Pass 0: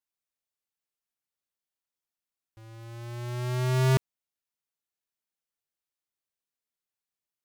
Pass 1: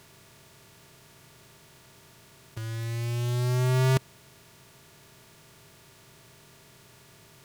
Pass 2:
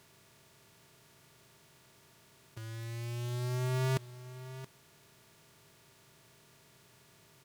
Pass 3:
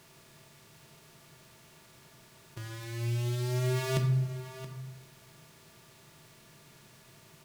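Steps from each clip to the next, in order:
compressor on every frequency bin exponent 0.4; level −1 dB
low-shelf EQ 73 Hz −5.5 dB; single-tap delay 674 ms −14.5 dB; level −7.5 dB
rectangular room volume 260 cubic metres, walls mixed, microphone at 0.78 metres; dynamic equaliser 950 Hz, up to −6 dB, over −51 dBFS, Q 1.2; level +3.5 dB

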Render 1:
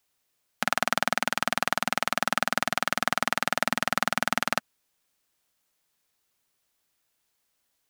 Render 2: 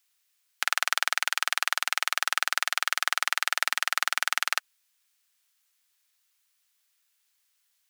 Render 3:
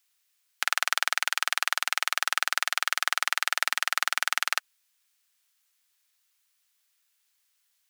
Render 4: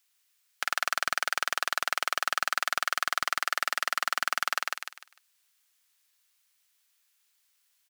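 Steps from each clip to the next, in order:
high-pass filter 1,500 Hz 12 dB per octave; level +3 dB
no processing that can be heard
on a send: repeating echo 150 ms, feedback 31%, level −5 dB; on the sum: hard clipping −15 dBFS, distortion −3 dB

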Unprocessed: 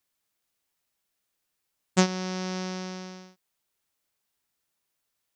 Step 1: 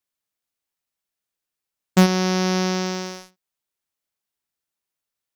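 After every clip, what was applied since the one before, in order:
leveller curve on the samples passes 3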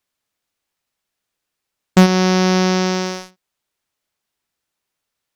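high-shelf EQ 8,100 Hz −8 dB
in parallel at +2.5 dB: downward compressor, threshold −25 dBFS, peak gain reduction 13.5 dB
on the sum: level +2 dB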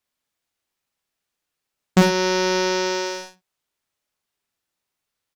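ambience of single reflections 40 ms −6 dB, 52 ms −6.5 dB
level −4 dB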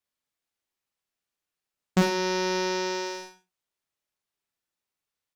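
reverb whose tail is shaped and stops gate 120 ms rising, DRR 12 dB
level −7 dB

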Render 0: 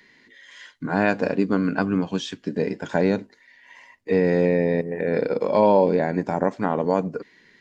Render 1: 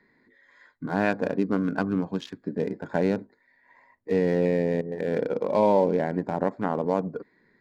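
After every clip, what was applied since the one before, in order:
adaptive Wiener filter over 15 samples
level −3.5 dB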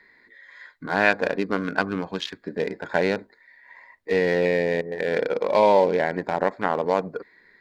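octave-band graphic EQ 125/250/2,000/4,000 Hz −9/−7/+6/+6 dB
level +4.5 dB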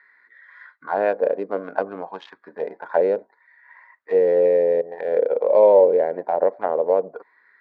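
envelope filter 510–1,400 Hz, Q 3.3, down, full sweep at −19 dBFS
level +7.5 dB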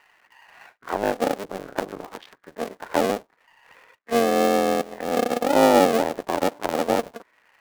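sub-harmonics by changed cycles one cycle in 2, muted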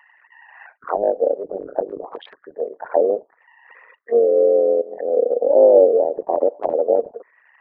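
spectral envelope exaggerated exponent 3
level +5 dB

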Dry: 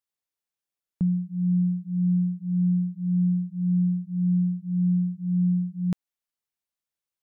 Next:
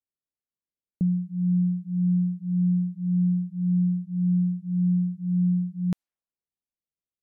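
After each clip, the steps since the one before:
low-pass that shuts in the quiet parts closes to 420 Hz, open at −25 dBFS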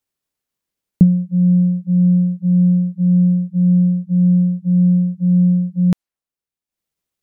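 in parallel at +1 dB: brickwall limiter −28 dBFS, peak gain reduction 10 dB
on the sum: transient designer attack +8 dB, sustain −9 dB
level +6 dB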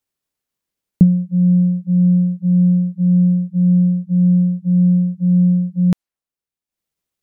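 no processing that can be heard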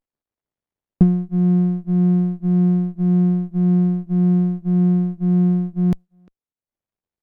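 far-end echo of a speakerphone 350 ms, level −26 dB
windowed peak hold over 33 samples
level −2.5 dB

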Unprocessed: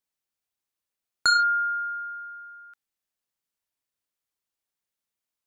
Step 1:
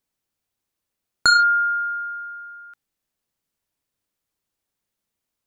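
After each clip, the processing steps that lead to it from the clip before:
low-shelf EQ 450 Hz +9 dB
mains-hum notches 60/120/180 Hz
level +4.5 dB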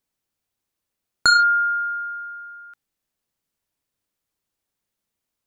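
no processing that can be heard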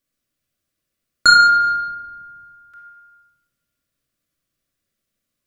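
Butterworth band-reject 880 Hz, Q 3.1
rectangular room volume 1,500 cubic metres, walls mixed, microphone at 2.4 metres

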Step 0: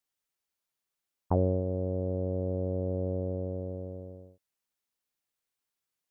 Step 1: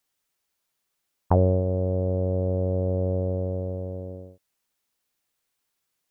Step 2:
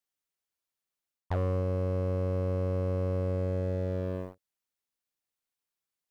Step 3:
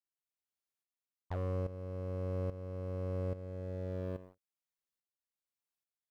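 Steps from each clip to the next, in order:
dynamic equaliser 290 Hz, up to −5 dB, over −42 dBFS, Q 0.87; level +8.5 dB
leveller curve on the samples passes 3; reversed playback; downward compressor, threshold −22 dBFS, peak gain reduction 11 dB; reversed playback; level −6 dB
shaped tremolo saw up 1.2 Hz, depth 75%; level −5 dB

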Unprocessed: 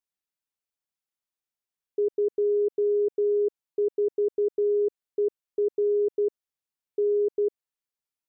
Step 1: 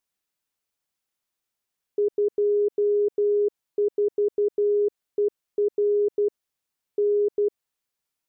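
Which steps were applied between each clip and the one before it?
brickwall limiter −25.5 dBFS, peak gain reduction 5.5 dB
level +7.5 dB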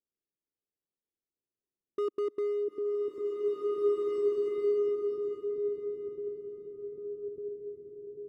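low-pass filter sweep 400 Hz → 170 Hz, 0:01.37–0:04.59
hard clipping −20 dBFS, distortion −15 dB
slow-attack reverb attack 2,160 ms, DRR −4 dB
level −8 dB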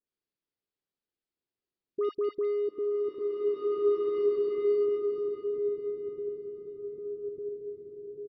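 all-pass dispersion highs, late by 72 ms, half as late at 1,500 Hz
downsampling to 11,025 Hz
level +2 dB

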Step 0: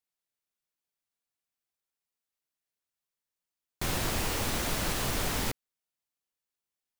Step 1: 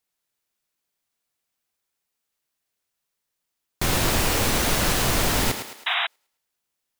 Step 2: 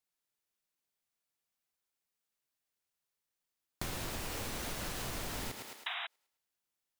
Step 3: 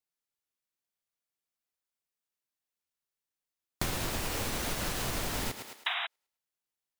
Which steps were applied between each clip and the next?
feedback echo with a high-pass in the loop 107 ms, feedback 46%, high-pass 280 Hz, level −8 dB; sound drawn into the spectrogram noise, 0:05.86–0:06.07, 650–3,900 Hz −32 dBFS; level +8.5 dB
downward compressor 10 to 1, threshold −28 dBFS, peak gain reduction 11.5 dB; level −8 dB
expander for the loud parts 1.5 to 1, over −60 dBFS; level +8 dB

